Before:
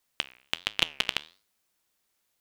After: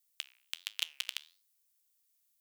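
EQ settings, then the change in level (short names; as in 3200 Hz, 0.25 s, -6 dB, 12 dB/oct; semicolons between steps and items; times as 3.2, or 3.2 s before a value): differentiator; low shelf 190 Hz -3.5 dB; -2.0 dB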